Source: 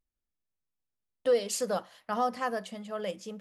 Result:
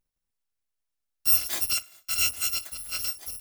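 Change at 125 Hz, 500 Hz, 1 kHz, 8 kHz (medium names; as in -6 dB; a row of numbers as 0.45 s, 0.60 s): no reading, -23.5 dB, -13.0 dB, +11.5 dB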